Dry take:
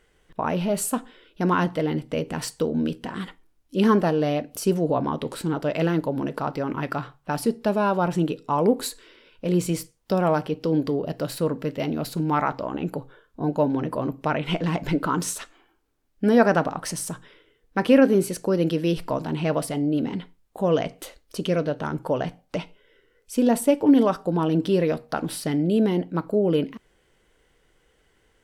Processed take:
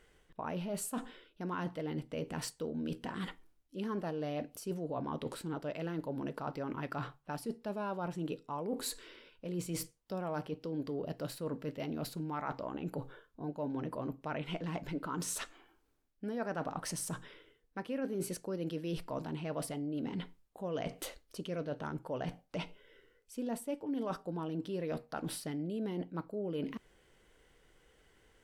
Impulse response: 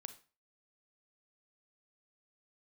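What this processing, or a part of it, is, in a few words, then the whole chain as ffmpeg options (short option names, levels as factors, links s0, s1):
compression on the reversed sound: -af "areverse,acompressor=threshold=0.02:ratio=5,areverse,volume=0.75"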